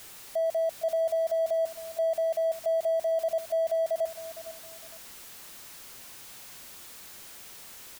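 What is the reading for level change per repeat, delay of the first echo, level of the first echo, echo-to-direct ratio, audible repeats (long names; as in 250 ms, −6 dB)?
−10.0 dB, 459 ms, −14.5 dB, −14.0 dB, 2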